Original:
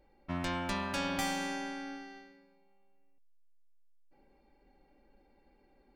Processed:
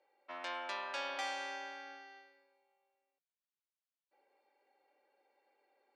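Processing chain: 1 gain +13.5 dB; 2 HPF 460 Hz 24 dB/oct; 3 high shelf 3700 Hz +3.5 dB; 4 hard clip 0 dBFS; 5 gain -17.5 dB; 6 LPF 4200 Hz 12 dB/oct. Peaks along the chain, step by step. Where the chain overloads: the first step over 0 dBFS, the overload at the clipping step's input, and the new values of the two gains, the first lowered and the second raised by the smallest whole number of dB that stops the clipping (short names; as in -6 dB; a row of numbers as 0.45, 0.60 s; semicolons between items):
-6.0, -6.5, -4.5, -4.5, -22.0, -26.0 dBFS; no overload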